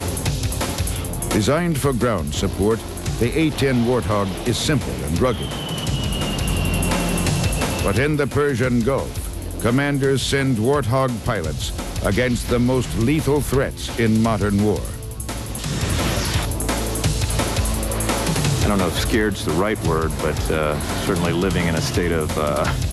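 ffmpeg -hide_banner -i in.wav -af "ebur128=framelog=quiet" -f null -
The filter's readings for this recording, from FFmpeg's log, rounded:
Integrated loudness:
  I:         -20.7 LUFS
  Threshold: -30.7 LUFS
Loudness range:
  LRA:         1.6 LU
  Threshold: -40.6 LUFS
  LRA low:   -21.5 LUFS
  LRA high:  -19.9 LUFS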